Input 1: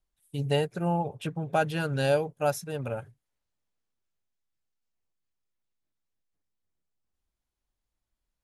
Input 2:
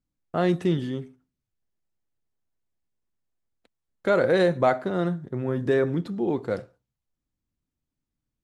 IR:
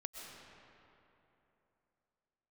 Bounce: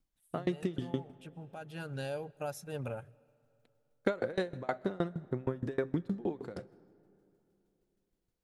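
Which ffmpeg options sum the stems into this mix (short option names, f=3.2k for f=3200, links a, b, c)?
-filter_complex "[0:a]alimiter=level_in=0.5dB:limit=-24dB:level=0:latency=1:release=385,volume=-0.5dB,volume=-4dB,asplit=2[a][b];[b]volume=-21dB[c];[1:a]acompressor=threshold=-26dB:ratio=6,aeval=exprs='val(0)*pow(10,-29*if(lt(mod(6.4*n/s,1),2*abs(6.4)/1000),1-mod(6.4*n/s,1)/(2*abs(6.4)/1000),(mod(6.4*n/s,1)-2*abs(6.4)/1000)/(1-2*abs(6.4)/1000))/20)':c=same,volume=2.5dB,asplit=3[d][e][f];[e]volume=-16.5dB[g];[f]apad=whole_len=372199[h];[a][h]sidechaincompress=threshold=-46dB:ratio=4:attack=11:release=952[i];[2:a]atrim=start_sample=2205[j];[c][g]amix=inputs=2:normalize=0[k];[k][j]afir=irnorm=-1:irlink=0[l];[i][d][l]amix=inputs=3:normalize=0"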